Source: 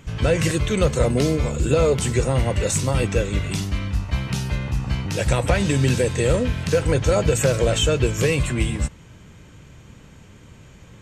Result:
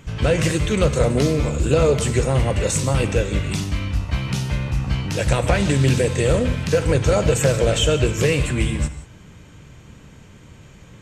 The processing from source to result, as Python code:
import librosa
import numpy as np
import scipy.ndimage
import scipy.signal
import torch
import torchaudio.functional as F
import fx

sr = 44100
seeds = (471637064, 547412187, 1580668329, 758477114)

y = fx.rev_gated(x, sr, seeds[0], gate_ms=200, shape='flat', drr_db=10.5)
y = fx.doppler_dist(y, sr, depth_ms=0.15)
y = F.gain(torch.from_numpy(y), 1.0).numpy()